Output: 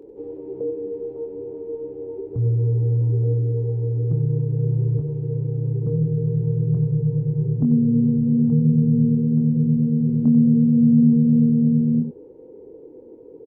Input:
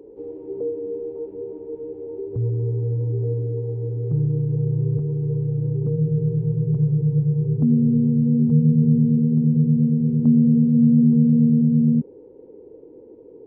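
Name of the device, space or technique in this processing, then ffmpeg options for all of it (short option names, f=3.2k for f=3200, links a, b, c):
slapback doubling: -filter_complex "[0:a]asplit=3[a][b][c];[b]adelay=24,volume=-6dB[d];[c]adelay=93,volume=-10.5dB[e];[a][d][e]amix=inputs=3:normalize=0"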